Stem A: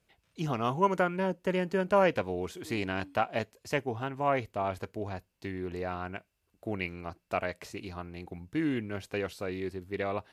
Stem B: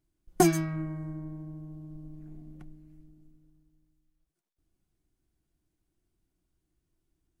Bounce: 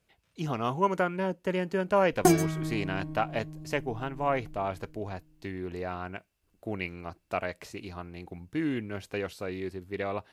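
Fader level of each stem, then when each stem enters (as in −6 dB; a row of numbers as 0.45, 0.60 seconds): 0.0, +0.5 decibels; 0.00, 1.85 seconds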